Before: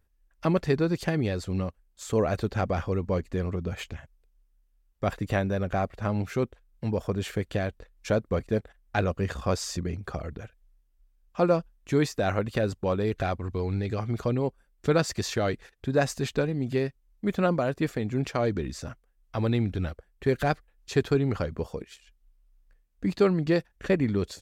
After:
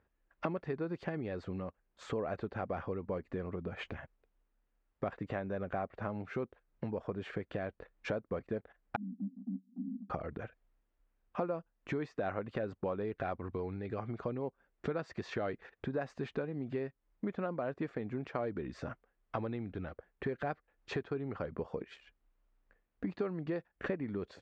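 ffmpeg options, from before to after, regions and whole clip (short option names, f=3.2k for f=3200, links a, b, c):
-filter_complex "[0:a]asettb=1/sr,asplit=3[a][b][c];[a]atrim=end=8.964[d];[b]atrim=start=8.96:end=10.1,asetpts=PTS-STARTPTS,afade=t=in:d=0.004:c=qsin,afade=t=out:st=1.136:d=0.004:c=qsin,asuperpass=centerf=230:order=12:qfactor=2.7,acompressor=mode=upward:threshold=-42dB:ratio=2.5:attack=3.2:release=140:knee=2.83:detection=peak[e];[c]atrim=start=10.096[f];[d][e]acrossfade=d=0.004:c1=hsin:c2=qsin[g];[g][f]acrossfade=d=0.004:c1=qsin:c2=hsin,lowpass=1.9k,acompressor=threshold=-36dB:ratio=10,highpass=f=250:p=1,volume=5dB"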